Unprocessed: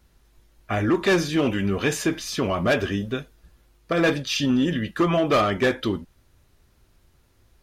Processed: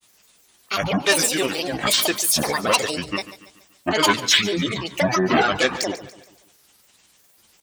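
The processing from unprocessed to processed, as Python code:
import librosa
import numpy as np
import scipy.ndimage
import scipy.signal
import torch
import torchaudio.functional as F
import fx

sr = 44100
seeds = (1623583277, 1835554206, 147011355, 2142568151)

p1 = scipy.signal.sosfilt(scipy.signal.butter(2, 87.0, 'highpass', fs=sr, output='sos'), x)
p2 = fx.riaa(p1, sr, side='recording')
p3 = fx.spec_gate(p2, sr, threshold_db=-30, keep='strong')
p4 = fx.peak_eq(p3, sr, hz=5200.0, db=5.5, octaves=0.21)
p5 = fx.granulator(p4, sr, seeds[0], grain_ms=100.0, per_s=20.0, spray_ms=36.0, spread_st=12)
p6 = p5 + fx.echo_feedback(p5, sr, ms=143, feedback_pct=45, wet_db=-15.5, dry=0)
y = p6 * 10.0 ** (4.0 / 20.0)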